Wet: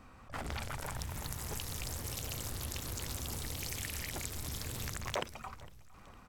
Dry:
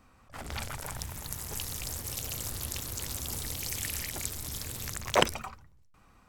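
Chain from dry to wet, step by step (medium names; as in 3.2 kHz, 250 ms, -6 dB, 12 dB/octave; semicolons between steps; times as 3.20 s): treble shelf 4.9 kHz -6.5 dB; compression 4:1, threshold -42 dBFS, peak gain reduction 20.5 dB; feedback delay 457 ms, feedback 50%, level -21.5 dB; trim +5 dB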